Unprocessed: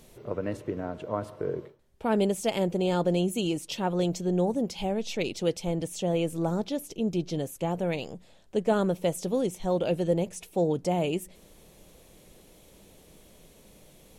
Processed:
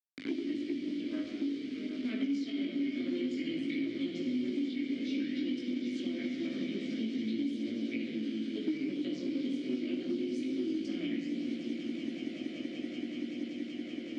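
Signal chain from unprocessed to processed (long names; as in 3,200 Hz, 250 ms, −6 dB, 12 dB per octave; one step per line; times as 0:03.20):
pitch shifter gated in a rhythm −6.5 semitones, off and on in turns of 246 ms
convolution reverb RT60 1.7 s, pre-delay 3 ms, DRR −2.5 dB
harmonic generator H 3 −21 dB, 5 −33 dB, 6 −18 dB, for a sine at −7.5 dBFS
low shelf with overshoot 190 Hz −8 dB, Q 1.5
centre clipping without the shift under −37.5 dBFS
Butterworth low-pass 9,900 Hz 36 dB per octave
parametric band 4,700 Hz +11 dB 0.88 octaves
echo that builds up and dies away 190 ms, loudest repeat 5, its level −15 dB
multi-voice chorus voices 2, 0.26 Hz, delay 19 ms, depth 1.8 ms
formant filter i
multiband upward and downward compressor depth 100%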